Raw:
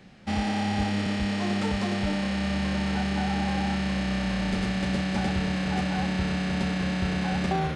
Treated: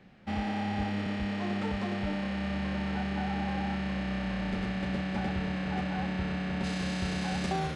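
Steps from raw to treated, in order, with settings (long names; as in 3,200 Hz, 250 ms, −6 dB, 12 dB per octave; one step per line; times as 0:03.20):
bass and treble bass −1 dB, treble −11 dB, from 0:06.63 treble +6 dB
level −4.5 dB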